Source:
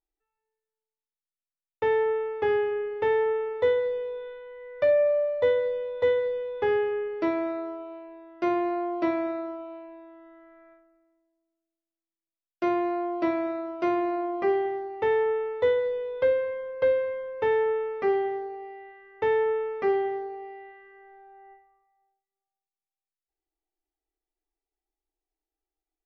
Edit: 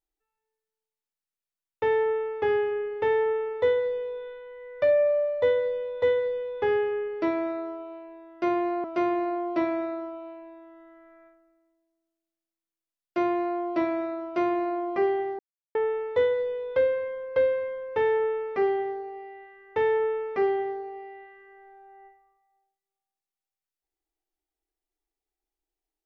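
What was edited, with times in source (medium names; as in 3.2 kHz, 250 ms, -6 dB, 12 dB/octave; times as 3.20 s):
13.70–14.24 s: copy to 8.84 s
14.85–15.21 s: mute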